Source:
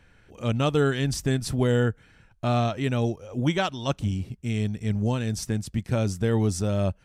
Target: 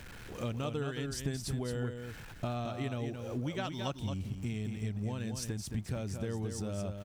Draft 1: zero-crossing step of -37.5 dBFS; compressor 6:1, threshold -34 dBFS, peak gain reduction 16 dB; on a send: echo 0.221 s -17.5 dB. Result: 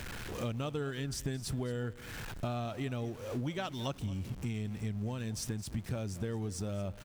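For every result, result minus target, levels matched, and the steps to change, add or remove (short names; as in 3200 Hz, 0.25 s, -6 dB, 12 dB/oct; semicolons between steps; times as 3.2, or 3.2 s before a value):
echo-to-direct -11 dB; zero-crossing step: distortion +8 dB
change: echo 0.221 s -6.5 dB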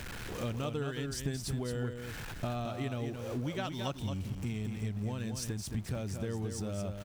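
zero-crossing step: distortion +8 dB
change: zero-crossing step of -45.5 dBFS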